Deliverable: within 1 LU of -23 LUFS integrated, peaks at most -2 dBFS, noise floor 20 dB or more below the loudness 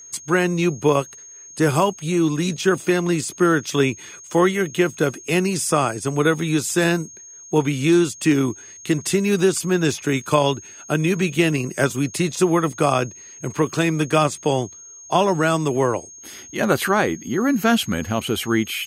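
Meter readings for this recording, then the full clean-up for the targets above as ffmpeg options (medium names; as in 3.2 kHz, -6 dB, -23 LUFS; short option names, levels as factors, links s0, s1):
steady tone 6.5 kHz; tone level -39 dBFS; loudness -20.5 LUFS; peak level -3.5 dBFS; loudness target -23.0 LUFS
-> -af "bandreject=f=6500:w=30"
-af "volume=0.75"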